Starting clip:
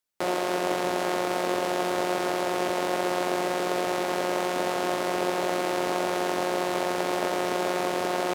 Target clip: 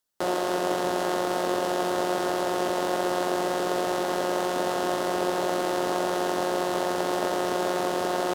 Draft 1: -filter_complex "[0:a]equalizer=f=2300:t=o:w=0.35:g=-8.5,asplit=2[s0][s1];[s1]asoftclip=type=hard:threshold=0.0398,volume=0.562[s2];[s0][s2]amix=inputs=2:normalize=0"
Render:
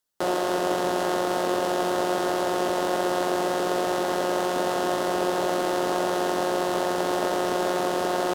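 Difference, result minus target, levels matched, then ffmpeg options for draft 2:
hard clipper: distortion -5 dB
-filter_complex "[0:a]equalizer=f=2300:t=o:w=0.35:g=-8.5,asplit=2[s0][s1];[s1]asoftclip=type=hard:threshold=0.0106,volume=0.562[s2];[s0][s2]amix=inputs=2:normalize=0"

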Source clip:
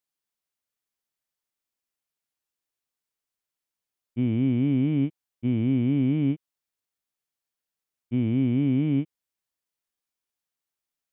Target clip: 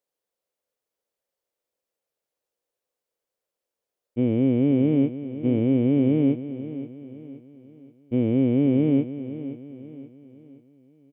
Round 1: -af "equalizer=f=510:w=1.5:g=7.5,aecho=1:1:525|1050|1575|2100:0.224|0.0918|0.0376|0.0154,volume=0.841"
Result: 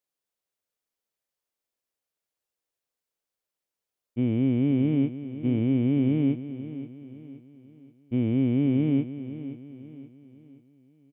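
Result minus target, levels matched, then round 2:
500 Hz band -4.5 dB
-af "equalizer=f=510:w=1.5:g=18.5,aecho=1:1:525|1050|1575|2100:0.224|0.0918|0.0376|0.0154,volume=0.841"

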